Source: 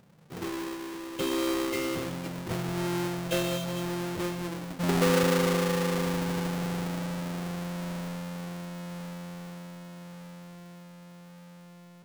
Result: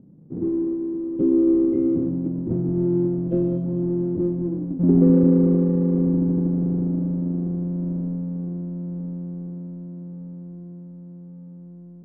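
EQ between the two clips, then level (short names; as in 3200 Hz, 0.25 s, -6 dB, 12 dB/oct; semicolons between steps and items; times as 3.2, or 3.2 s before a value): synth low-pass 290 Hz, resonance Q 3.4; +6.0 dB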